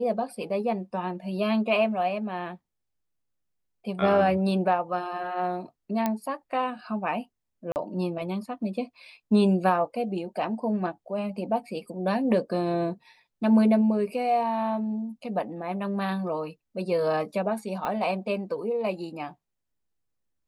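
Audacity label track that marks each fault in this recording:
6.060000	6.060000	click −12 dBFS
7.720000	7.760000	drop-out 39 ms
17.850000	17.850000	click −18 dBFS

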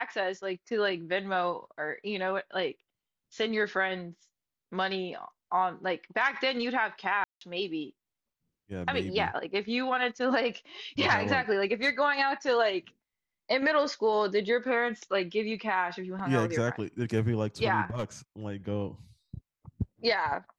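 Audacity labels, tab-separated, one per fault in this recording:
7.240000	7.410000	drop-out 173 ms
17.840000	18.040000	clipping −27.5 dBFS

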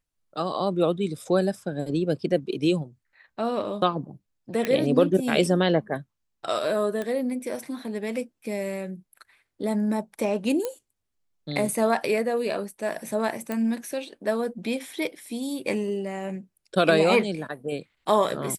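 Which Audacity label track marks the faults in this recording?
4.650000	4.650000	click −12 dBFS
7.020000	7.020000	click −18 dBFS
10.650000	10.650000	click −14 dBFS
13.520000	13.520000	click −16 dBFS

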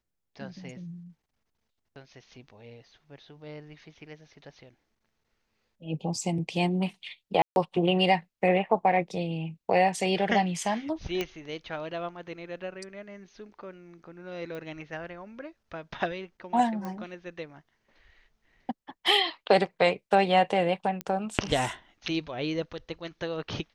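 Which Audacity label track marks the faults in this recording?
7.420000	7.560000	drop-out 141 ms
11.210000	11.210000	click −15 dBFS
14.550000	14.550000	click −28 dBFS
16.850000	16.850000	click −24 dBFS
21.010000	21.010000	click −17 dBFS

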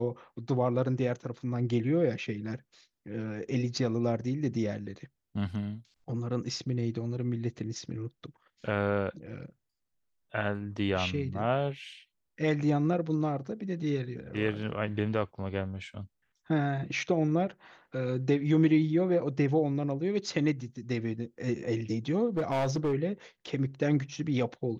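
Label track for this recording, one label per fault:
22.370000	22.940000	clipping −24.5 dBFS

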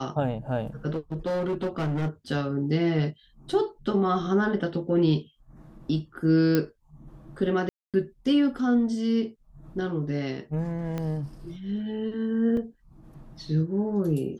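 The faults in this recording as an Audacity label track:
0.900000	2.080000	clipping −24 dBFS
6.550000	6.550000	click −10 dBFS
7.690000	7.940000	drop-out 247 ms
10.980000	10.980000	click −19 dBFS
12.570000	12.570000	drop-out 2.3 ms

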